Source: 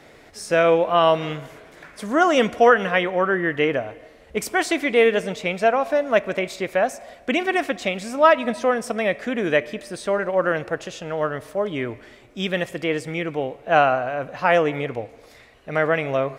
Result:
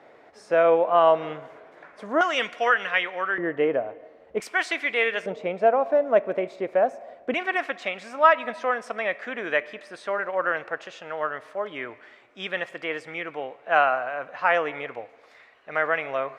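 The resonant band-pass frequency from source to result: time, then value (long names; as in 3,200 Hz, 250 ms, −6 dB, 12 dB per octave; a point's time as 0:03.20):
resonant band-pass, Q 0.88
770 Hz
from 0:02.21 2,300 Hz
from 0:03.38 590 Hz
from 0:04.40 1,900 Hz
from 0:05.26 550 Hz
from 0:07.34 1,400 Hz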